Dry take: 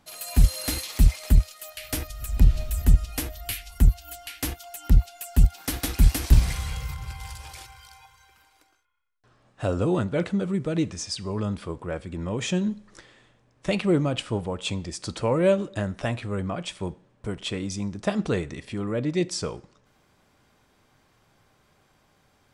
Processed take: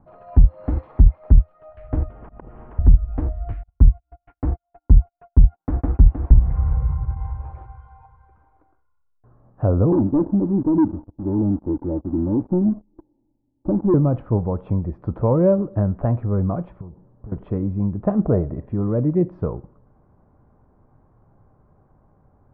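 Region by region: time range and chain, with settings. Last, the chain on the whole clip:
2.1–2.79 steep low-pass 3200 Hz 96 dB/oct + auto swell 0.48 s + spectral compressor 10:1
3.63–7.17 gate -38 dBFS, range -38 dB + LPF 2800 Hz
9.92–13.94 vocal tract filter u + comb 3.4 ms, depth 39% + sample leveller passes 3
16.81–17.32 dynamic EQ 550 Hz, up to -3 dB, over -44 dBFS, Q 0.8 + compressor, threshold -44 dBFS + Doppler distortion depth 0.47 ms
18.24–18.67 LPF 2200 Hz + bell 620 Hz +12 dB 0.26 oct
whole clip: LPF 1100 Hz 24 dB/oct; low shelf 160 Hz +10.5 dB; compressor 2.5:1, threshold -14 dBFS; gain +3.5 dB

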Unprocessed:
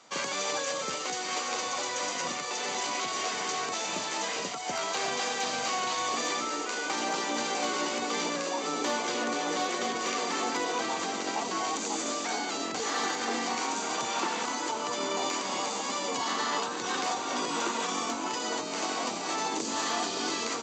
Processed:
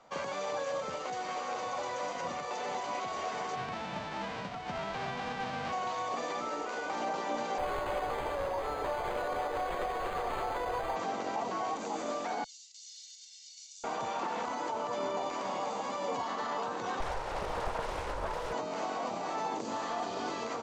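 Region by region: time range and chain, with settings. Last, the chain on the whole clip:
3.55–5.71 spectral whitening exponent 0.3 + LPF 3900 Hz
7.58–10.96 steep high-pass 340 Hz + careless resampling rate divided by 8×, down none, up hold
12.44–13.84 inverse Chebyshev high-pass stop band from 1300 Hz, stop band 60 dB + comb 1.4 ms, depth 66%
17–18.53 minimum comb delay 2.1 ms + Doppler distortion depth 0.9 ms
whole clip: resonant low shelf 450 Hz -8 dB, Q 1.5; limiter -23 dBFS; tilt -4.5 dB/oct; gain -2.5 dB

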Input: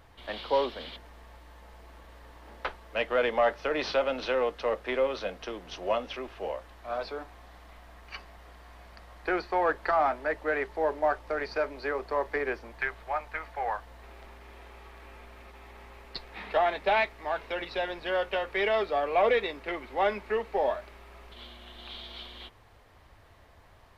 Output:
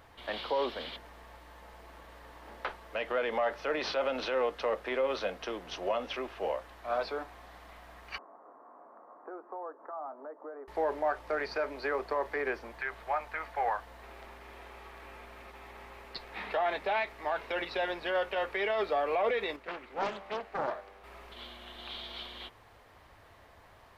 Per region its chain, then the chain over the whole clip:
8.18–10.68 compressor 3:1, threshold -44 dBFS + elliptic band-pass 250–1200 Hz, stop band 50 dB
19.56–21.04 resonator 98 Hz, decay 1.7 s + Doppler distortion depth 0.71 ms
whole clip: tilt +2 dB/oct; limiter -24 dBFS; high shelf 2500 Hz -10 dB; gain +3.5 dB

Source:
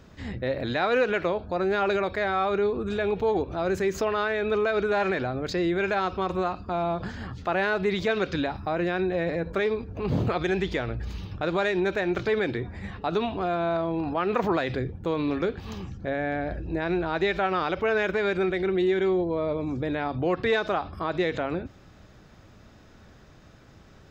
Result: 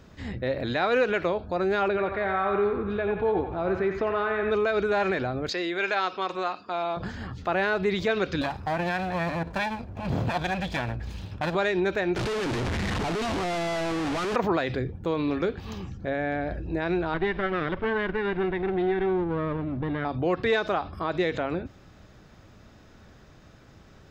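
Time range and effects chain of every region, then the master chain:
1.88–4.51 air absorption 330 m + narrowing echo 89 ms, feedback 61%, band-pass 1500 Hz, level -3.5 dB
5.49–6.97 BPF 220–5000 Hz + tilt +3 dB/oct
8.41–11.55 minimum comb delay 1.2 ms + HPF 51 Hz
12.16–14.36 infinite clipping + air absorption 80 m
17.14–20.05 minimum comb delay 0.56 ms + air absorption 370 m
whole clip: dry

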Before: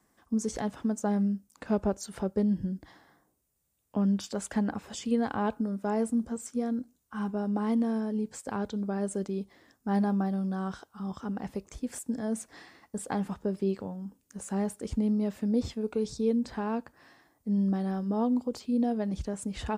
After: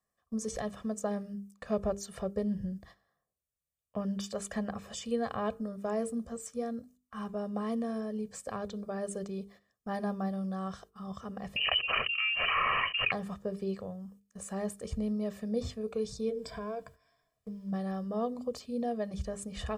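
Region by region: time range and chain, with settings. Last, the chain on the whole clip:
11.56–13.12 inverted band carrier 3000 Hz + fast leveller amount 100%
16.29–17.72 ripple EQ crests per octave 1.7, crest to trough 16 dB + compressor 4:1, threshold -31 dBFS + added noise pink -72 dBFS
whole clip: gate -51 dBFS, range -14 dB; notches 50/100/150/200/250/300/350/400/450 Hz; comb 1.7 ms, depth 73%; gain -3.5 dB

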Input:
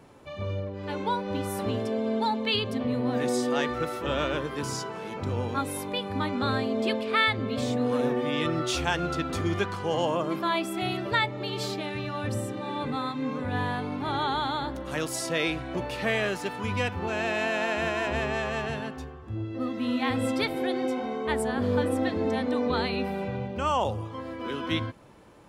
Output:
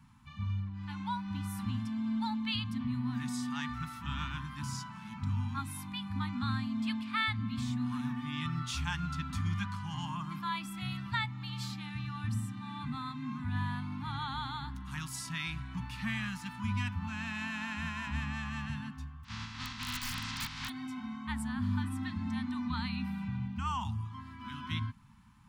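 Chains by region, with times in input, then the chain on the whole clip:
19.23–20.68 spectral contrast lowered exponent 0.21 + LPF 5100 Hz 24 dB/oct + wrapped overs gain 20 dB
whole clip: Chebyshev band-stop 230–960 Hz, order 3; low shelf 370 Hz +8 dB; gain -8 dB

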